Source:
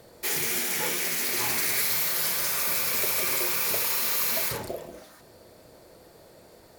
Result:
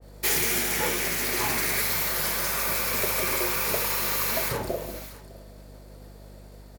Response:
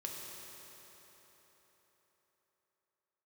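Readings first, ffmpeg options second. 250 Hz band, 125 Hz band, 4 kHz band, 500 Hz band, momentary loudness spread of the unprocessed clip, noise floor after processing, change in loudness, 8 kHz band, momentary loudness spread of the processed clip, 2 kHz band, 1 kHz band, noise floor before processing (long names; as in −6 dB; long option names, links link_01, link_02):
+5.0 dB, +7.0 dB, 0.0 dB, +4.5 dB, 4 LU, −47 dBFS, 0.0 dB, −0.5 dB, 7 LU, +2.5 dB, +4.0 dB, −53 dBFS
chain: -af "aeval=exprs='val(0)+0.00562*(sin(2*PI*50*n/s)+sin(2*PI*2*50*n/s)/2+sin(2*PI*3*50*n/s)/3+sin(2*PI*4*50*n/s)/4+sin(2*PI*5*50*n/s)/5)':channel_layout=same,agate=range=-33dB:threshold=-40dB:ratio=3:detection=peak,aecho=1:1:605:0.0944,adynamicequalizer=threshold=0.00708:dfrequency=2200:dqfactor=0.7:tfrequency=2200:tqfactor=0.7:attack=5:release=100:ratio=0.375:range=3:mode=cutabove:tftype=highshelf,volume=4.5dB"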